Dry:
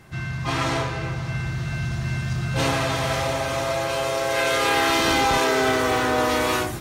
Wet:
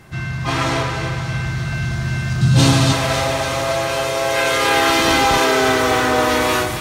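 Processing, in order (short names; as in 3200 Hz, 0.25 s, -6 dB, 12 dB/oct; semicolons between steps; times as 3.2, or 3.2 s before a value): 2.41–2.93 graphic EQ 125/250/500/2000/4000/8000 Hz +8/+8/-4/-4/+6/+6 dB; thinning echo 0.278 s, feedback 64%, high-pass 960 Hz, level -8 dB; gain +4.5 dB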